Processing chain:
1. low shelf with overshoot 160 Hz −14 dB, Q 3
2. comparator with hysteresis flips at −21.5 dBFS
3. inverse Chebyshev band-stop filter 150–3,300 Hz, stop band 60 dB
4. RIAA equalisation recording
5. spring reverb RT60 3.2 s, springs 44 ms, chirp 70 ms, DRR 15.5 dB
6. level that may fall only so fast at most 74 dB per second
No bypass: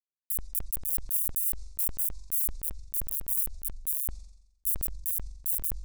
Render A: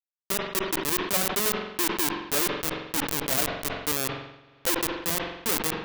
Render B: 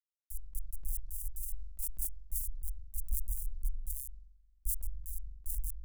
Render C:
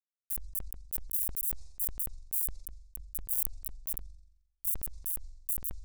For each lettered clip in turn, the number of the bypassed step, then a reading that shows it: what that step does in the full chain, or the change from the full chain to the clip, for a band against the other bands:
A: 3, change in crest factor +2.0 dB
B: 4, change in crest factor −3.5 dB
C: 1, change in crest factor +7.5 dB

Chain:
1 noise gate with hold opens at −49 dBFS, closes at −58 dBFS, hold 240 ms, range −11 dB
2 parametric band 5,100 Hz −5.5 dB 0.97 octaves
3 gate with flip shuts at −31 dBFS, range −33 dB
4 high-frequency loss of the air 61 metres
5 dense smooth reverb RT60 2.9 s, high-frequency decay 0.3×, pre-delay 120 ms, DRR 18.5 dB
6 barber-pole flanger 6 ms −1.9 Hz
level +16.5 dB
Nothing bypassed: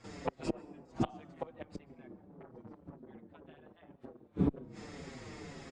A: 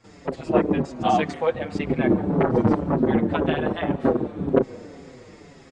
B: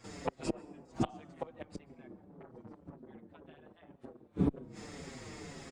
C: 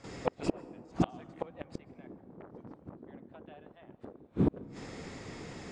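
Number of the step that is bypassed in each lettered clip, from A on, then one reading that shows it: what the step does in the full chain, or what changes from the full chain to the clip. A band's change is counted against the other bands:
3, change in momentary loudness spread −12 LU
4, 4 kHz band +2.0 dB
6, change in integrated loudness +3.0 LU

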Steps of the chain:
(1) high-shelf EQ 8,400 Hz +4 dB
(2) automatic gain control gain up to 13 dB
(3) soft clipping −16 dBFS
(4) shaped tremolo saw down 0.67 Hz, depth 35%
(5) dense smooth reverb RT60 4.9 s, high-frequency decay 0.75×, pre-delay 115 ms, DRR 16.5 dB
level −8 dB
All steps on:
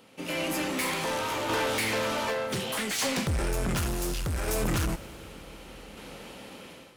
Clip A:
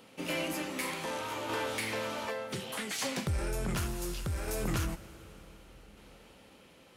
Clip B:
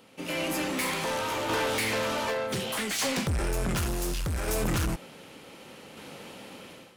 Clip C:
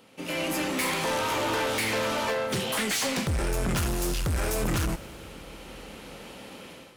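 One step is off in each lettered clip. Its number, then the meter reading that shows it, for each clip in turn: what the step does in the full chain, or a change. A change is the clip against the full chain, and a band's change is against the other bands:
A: 2, change in momentary loudness spread −8 LU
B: 5, change in crest factor −2.0 dB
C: 4, change in integrated loudness +1.5 LU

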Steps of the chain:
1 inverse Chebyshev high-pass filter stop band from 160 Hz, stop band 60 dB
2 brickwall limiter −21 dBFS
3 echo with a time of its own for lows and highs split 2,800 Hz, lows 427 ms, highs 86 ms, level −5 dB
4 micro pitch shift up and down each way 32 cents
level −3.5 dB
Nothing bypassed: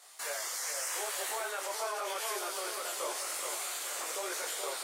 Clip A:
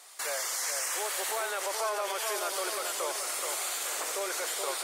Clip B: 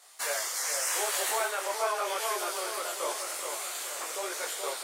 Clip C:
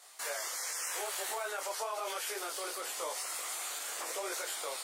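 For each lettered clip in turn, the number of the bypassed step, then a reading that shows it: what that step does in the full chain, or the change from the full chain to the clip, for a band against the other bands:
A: 4, change in integrated loudness +4.0 LU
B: 2, average gain reduction 3.0 dB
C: 3, change in integrated loudness −1.5 LU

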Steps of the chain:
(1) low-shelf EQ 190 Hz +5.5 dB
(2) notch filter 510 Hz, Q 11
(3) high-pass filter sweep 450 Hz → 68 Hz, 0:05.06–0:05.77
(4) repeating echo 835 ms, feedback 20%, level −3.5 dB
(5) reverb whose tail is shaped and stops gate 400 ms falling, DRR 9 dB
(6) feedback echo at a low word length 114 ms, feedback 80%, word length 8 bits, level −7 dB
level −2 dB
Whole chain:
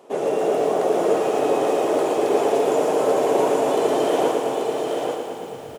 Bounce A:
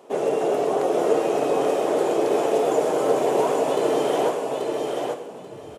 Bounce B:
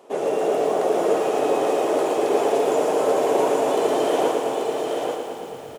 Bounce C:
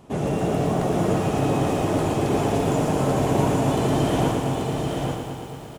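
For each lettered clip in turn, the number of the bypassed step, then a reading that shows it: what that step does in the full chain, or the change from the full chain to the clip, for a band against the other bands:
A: 6, change in integrated loudness −1.5 LU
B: 1, 125 Hz band −3.0 dB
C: 3, 125 Hz band +19.0 dB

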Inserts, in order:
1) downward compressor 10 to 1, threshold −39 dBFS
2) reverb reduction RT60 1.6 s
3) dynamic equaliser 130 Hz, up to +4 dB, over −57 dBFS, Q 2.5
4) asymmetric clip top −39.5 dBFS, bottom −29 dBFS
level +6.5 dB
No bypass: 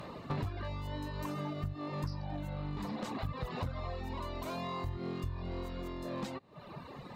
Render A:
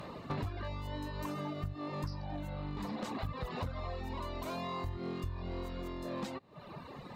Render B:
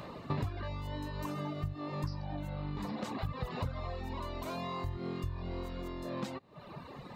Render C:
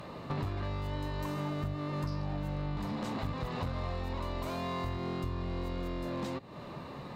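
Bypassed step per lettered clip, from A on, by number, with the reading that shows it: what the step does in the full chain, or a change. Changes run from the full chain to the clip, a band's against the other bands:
3, 125 Hz band −1.5 dB
4, distortion level −15 dB
2, change in integrated loudness +3.0 LU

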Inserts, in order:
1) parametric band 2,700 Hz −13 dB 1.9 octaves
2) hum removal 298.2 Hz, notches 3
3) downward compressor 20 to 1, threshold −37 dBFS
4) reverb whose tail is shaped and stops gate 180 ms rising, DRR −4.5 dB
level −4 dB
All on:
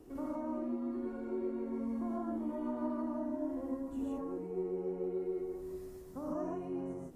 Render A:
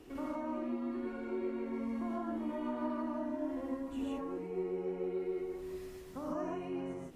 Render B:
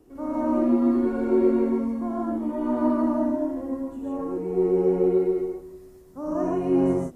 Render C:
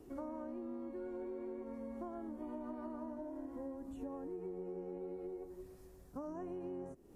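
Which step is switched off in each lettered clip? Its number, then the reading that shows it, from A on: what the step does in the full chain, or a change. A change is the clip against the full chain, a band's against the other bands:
1, 1 kHz band +3.0 dB
3, average gain reduction 11.5 dB
4, 250 Hz band −2.0 dB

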